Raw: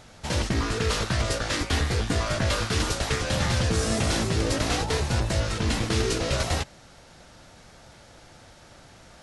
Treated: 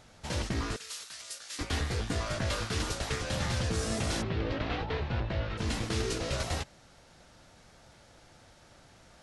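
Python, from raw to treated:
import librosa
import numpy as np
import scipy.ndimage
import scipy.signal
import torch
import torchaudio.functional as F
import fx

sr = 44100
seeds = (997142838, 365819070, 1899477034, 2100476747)

y = fx.differentiator(x, sr, at=(0.76, 1.59))
y = fx.lowpass(y, sr, hz=3500.0, slope=24, at=(4.21, 5.57), fade=0.02)
y = y * 10.0 ** (-7.0 / 20.0)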